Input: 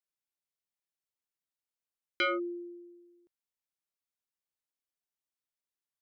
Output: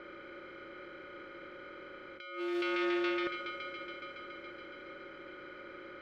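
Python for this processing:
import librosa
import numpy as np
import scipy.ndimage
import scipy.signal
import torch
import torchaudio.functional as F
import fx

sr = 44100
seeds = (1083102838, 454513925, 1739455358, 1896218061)

y = fx.bin_compress(x, sr, power=0.4)
y = fx.env_lowpass(y, sr, base_hz=1200.0, full_db=-32.0)
y = fx.dynamic_eq(y, sr, hz=310.0, q=1.4, threshold_db=-48.0, ratio=4.0, max_db=-6)
y = fx.echo_heads(y, sr, ms=140, heads='first and third', feedback_pct=69, wet_db=-18)
y = fx.over_compress(y, sr, threshold_db=-44.0, ratio=-1.0)
y = fx.doppler_dist(y, sr, depth_ms=0.1)
y = F.gain(torch.from_numpy(y), 8.0).numpy()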